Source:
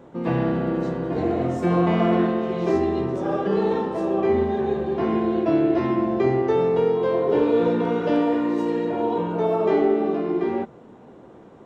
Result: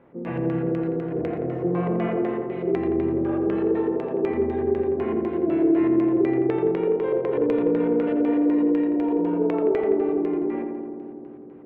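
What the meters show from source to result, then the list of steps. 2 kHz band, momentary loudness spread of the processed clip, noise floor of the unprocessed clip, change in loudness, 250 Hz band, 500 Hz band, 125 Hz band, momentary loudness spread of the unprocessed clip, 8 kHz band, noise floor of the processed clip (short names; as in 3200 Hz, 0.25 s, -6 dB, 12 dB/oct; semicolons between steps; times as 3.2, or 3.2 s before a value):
-4.5 dB, 7 LU, -46 dBFS, -1.0 dB, +0.5 dB, -1.5 dB, -4.0 dB, 5 LU, n/a, -39 dBFS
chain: LPF 4000 Hz 6 dB/oct; LFO low-pass square 4 Hz 440–2300 Hz; darkening echo 85 ms, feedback 85%, low-pass 1800 Hz, level -5 dB; gain -8.5 dB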